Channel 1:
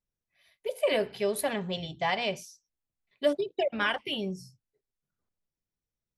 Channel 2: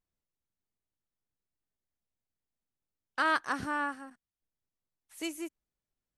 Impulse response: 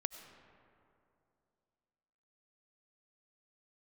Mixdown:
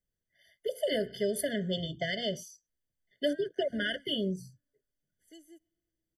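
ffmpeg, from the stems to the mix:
-filter_complex "[0:a]acrossover=split=300|3000[link_01][link_02][link_03];[link_02]acompressor=threshold=-33dB:ratio=3[link_04];[link_01][link_04][link_03]amix=inputs=3:normalize=0,volume=2dB[link_05];[1:a]acompressor=threshold=-31dB:ratio=6,adelay=100,volume=-16dB,asplit=2[link_06][link_07];[link_07]volume=-18.5dB[link_08];[2:a]atrim=start_sample=2205[link_09];[link_08][link_09]afir=irnorm=-1:irlink=0[link_10];[link_05][link_06][link_10]amix=inputs=3:normalize=0,afftfilt=real='re*eq(mod(floor(b*sr/1024/720),2),0)':imag='im*eq(mod(floor(b*sr/1024/720),2),0)':win_size=1024:overlap=0.75"

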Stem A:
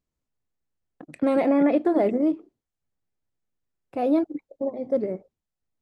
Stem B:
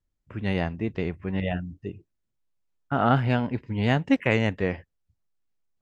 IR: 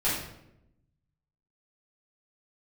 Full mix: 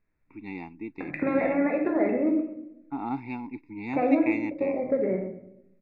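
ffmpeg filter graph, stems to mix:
-filter_complex "[0:a]lowpass=frequency=2100:width_type=q:width=3,acompressor=threshold=-27dB:ratio=6,volume=1.5dB,asplit=3[link_01][link_02][link_03];[link_02]volume=-10.5dB[link_04];[link_03]volume=-11.5dB[link_05];[1:a]asplit=3[link_06][link_07][link_08];[link_06]bandpass=frequency=300:width_type=q:width=8,volume=0dB[link_09];[link_07]bandpass=frequency=870:width_type=q:width=8,volume=-6dB[link_10];[link_08]bandpass=frequency=2240:width_type=q:width=8,volume=-9dB[link_11];[link_09][link_10][link_11]amix=inputs=3:normalize=0,highshelf=frequency=2100:gain=11.5,volume=1.5dB[link_12];[2:a]atrim=start_sample=2205[link_13];[link_04][link_13]afir=irnorm=-1:irlink=0[link_14];[link_05]aecho=0:1:129:1[link_15];[link_01][link_12][link_14][link_15]amix=inputs=4:normalize=0,asuperstop=centerf=3100:order=20:qfactor=4"

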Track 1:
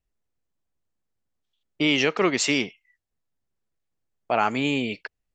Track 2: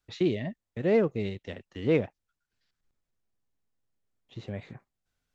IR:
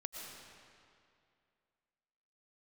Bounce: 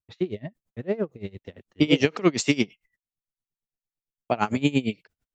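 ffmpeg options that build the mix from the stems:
-filter_complex "[0:a]equalizer=frequency=140:width=0.35:gain=13,volume=-2dB[link_01];[1:a]lowpass=frequency=1600:poles=1,volume=2.5dB[link_02];[link_01][link_02]amix=inputs=2:normalize=0,agate=range=-17dB:threshold=-57dB:ratio=16:detection=peak,highshelf=frequency=4300:gain=11,aeval=exprs='val(0)*pow(10,-23*(0.5-0.5*cos(2*PI*8.8*n/s))/20)':channel_layout=same"

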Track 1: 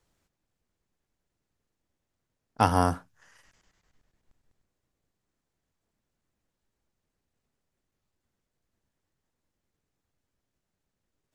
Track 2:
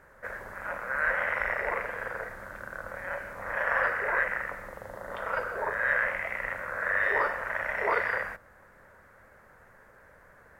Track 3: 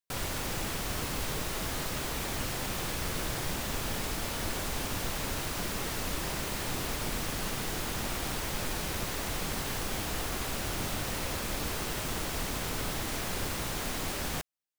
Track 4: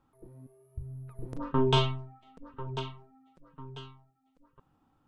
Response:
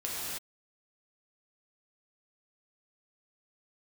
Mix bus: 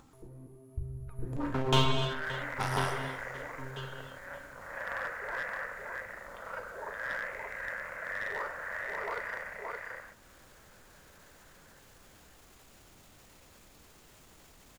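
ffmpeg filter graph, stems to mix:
-filter_complex "[0:a]highpass=1100,alimiter=limit=-17dB:level=0:latency=1:release=66,volume=-2dB,asplit=2[link_01][link_02];[link_02]volume=-15.5dB[link_03];[1:a]adelay=1200,volume=-10dB,asplit=2[link_04][link_05];[link_05]volume=-3.5dB[link_06];[2:a]alimiter=level_in=10dB:limit=-24dB:level=0:latency=1,volume=-10dB,adelay=2150,volume=-18.5dB[link_07];[3:a]aphaser=in_gain=1:out_gain=1:delay=3.2:decay=0.27:speed=0.72:type=triangular,volume=-1.5dB,asplit=3[link_08][link_09][link_10];[link_09]volume=-6dB[link_11];[link_10]volume=-15dB[link_12];[4:a]atrim=start_sample=2205[link_13];[link_03][link_11]amix=inputs=2:normalize=0[link_14];[link_14][link_13]afir=irnorm=-1:irlink=0[link_15];[link_06][link_12]amix=inputs=2:normalize=0,aecho=0:1:573:1[link_16];[link_01][link_04][link_07][link_08][link_15][link_16]amix=inputs=6:normalize=0,equalizer=frequency=7000:width=7:gain=5.5,acompressor=mode=upward:threshold=-51dB:ratio=2.5,aeval=exprs='clip(val(0),-1,0.0299)':channel_layout=same"

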